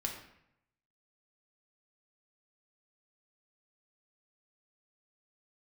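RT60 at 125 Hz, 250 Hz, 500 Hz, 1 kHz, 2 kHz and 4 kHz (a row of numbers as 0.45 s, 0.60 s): 1.0 s, 0.85 s, 0.75 s, 0.75 s, 0.75 s, 0.60 s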